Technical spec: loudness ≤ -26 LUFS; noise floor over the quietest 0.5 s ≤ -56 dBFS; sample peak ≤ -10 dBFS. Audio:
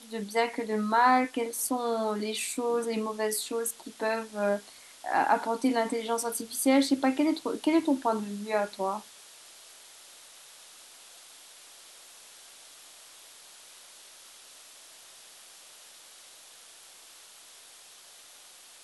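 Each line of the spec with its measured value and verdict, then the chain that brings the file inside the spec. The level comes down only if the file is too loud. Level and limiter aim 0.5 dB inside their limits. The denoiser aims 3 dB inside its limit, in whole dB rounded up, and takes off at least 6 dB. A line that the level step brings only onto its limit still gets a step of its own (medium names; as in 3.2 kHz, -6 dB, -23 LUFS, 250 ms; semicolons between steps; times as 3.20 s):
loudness -28.5 LUFS: pass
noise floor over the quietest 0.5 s -52 dBFS: fail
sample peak -12.0 dBFS: pass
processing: noise reduction 7 dB, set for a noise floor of -52 dBFS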